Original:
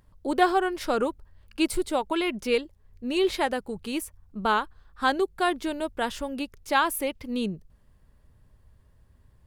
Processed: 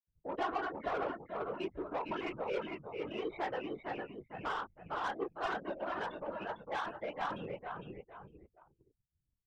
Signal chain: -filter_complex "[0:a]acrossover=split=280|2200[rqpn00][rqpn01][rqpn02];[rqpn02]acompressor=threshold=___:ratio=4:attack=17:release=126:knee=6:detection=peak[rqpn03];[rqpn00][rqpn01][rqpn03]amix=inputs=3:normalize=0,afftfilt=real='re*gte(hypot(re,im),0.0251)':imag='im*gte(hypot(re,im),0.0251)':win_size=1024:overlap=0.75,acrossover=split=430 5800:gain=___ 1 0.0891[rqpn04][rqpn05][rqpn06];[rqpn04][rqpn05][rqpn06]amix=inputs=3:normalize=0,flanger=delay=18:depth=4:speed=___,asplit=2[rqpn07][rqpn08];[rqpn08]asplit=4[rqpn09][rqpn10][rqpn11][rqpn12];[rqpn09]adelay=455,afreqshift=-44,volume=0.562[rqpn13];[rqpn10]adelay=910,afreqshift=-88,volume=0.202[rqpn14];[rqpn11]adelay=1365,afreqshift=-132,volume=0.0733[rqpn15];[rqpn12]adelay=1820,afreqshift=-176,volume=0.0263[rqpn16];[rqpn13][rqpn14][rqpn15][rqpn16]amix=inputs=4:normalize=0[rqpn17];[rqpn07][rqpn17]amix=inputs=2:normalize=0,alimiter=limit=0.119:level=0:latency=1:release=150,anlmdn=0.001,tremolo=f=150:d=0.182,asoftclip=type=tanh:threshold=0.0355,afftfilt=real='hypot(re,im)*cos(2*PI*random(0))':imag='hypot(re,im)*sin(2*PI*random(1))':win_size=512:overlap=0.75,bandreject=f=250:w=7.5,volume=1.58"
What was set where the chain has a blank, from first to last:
0.00316, 0.224, 1.4